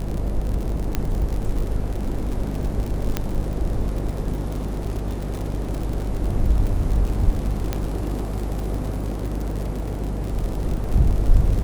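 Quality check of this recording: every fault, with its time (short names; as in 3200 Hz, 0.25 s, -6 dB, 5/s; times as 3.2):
buzz 50 Hz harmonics 20 -27 dBFS
crackle 64/s -26 dBFS
0.95 pop -8 dBFS
3.17 pop -7 dBFS
7.73 pop -10 dBFS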